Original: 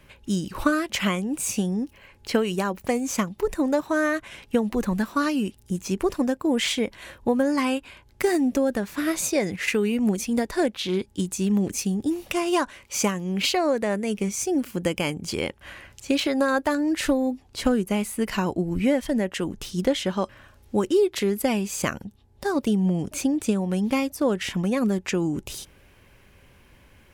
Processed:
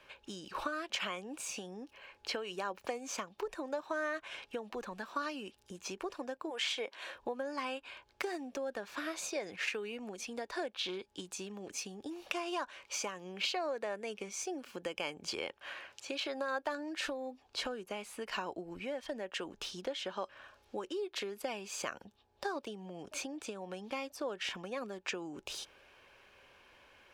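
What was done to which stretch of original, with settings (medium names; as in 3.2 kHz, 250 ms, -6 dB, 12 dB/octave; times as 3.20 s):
6.49–7.13 s: high-pass 660 Hz -> 210 Hz
15.58–16.21 s: high-pass 150 Hz 6 dB/octave
whole clip: compression, threshold -29 dBFS; three-band isolator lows -19 dB, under 410 Hz, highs -15 dB, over 6 kHz; band-stop 2 kHz, Q 9.6; trim -1.5 dB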